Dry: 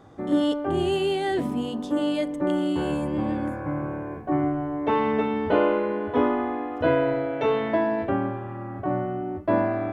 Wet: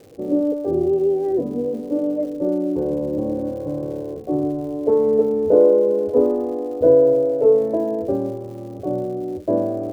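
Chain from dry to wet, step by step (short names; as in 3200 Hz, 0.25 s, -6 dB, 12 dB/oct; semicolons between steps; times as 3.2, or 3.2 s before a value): synth low-pass 490 Hz, resonance Q 4.9; crackle 240/s -38 dBFS; gain -1.5 dB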